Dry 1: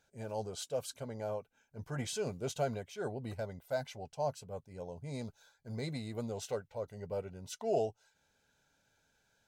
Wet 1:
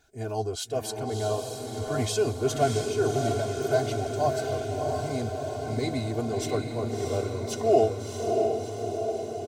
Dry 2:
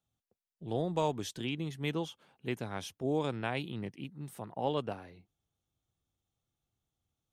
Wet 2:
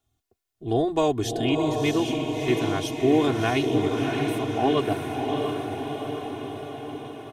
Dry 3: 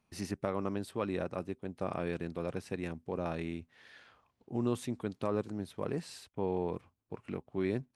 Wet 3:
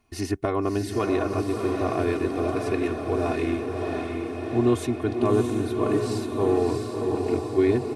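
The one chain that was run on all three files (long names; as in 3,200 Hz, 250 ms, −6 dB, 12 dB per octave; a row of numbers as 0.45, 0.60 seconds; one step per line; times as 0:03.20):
low-shelf EQ 390 Hz +4.5 dB
comb filter 2.8 ms, depth 98%
feedback delay with all-pass diffusion 662 ms, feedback 65%, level −3.5 dB
normalise the peak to −9 dBFS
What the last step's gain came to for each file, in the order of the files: +5.5, +6.0, +5.5 decibels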